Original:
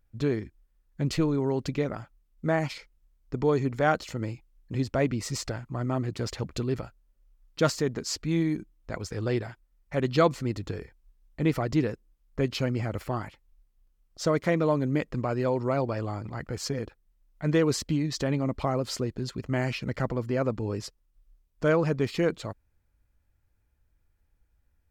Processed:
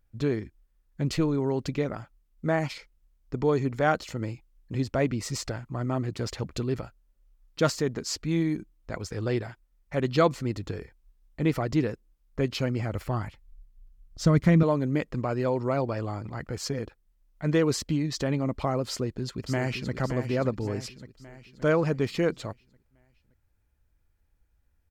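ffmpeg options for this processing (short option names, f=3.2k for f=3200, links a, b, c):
-filter_complex "[0:a]asettb=1/sr,asplit=3[a][b][c];[a]atrim=end=12.834[d];[b]atrim=start=12.83:end=14.63,asetpts=PTS-STARTPTS,afade=t=in:d=0.004:c=qsin,afade=t=out:st=1.796:d=0.004:c=qsin,asubboost=boost=11:cutoff=200[e];[c]atrim=start=14.626[f];[d][e]acrossfade=d=0.004:c1=hsin:c2=qsin[g];[g][f]acrossfade=d=0.004:c1=qsin:c2=hsin,asplit=2[h][i];[i]afade=t=in:st=18.89:d=0.01,afade=t=out:st=19.95:d=0.01,aecho=0:1:570|1140|1710|2280|2850|3420:0.398107|0.199054|0.0995268|0.0497634|0.0248817|0.0124408[j];[h][j]amix=inputs=2:normalize=0"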